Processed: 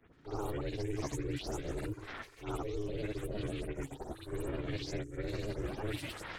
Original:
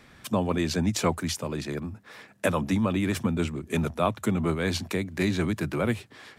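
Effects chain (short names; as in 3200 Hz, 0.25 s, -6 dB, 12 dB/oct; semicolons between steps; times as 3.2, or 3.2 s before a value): spectral delay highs late, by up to 0.16 s; gate with hold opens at -41 dBFS; low shelf 170 Hz +9 dB; reverse; compressor 10:1, threshold -37 dBFS, peak gain reduction 21 dB; reverse; grains, spray 0.1 s, pitch spread up and down by 3 st; ring modulator 210 Hz; reverse echo 58 ms -11 dB; three-band squash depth 40%; gain +5.5 dB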